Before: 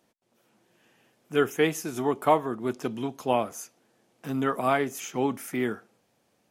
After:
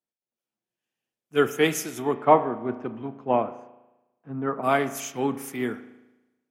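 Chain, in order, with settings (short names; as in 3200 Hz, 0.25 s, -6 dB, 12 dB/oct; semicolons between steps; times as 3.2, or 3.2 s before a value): 2.14–4.62 LPF 2900 Hz -> 1400 Hz 12 dB/oct; spring tank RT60 1.9 s, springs 36 ms, chirp 70 ms, DRR 10.5 dB; three-band expander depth 70%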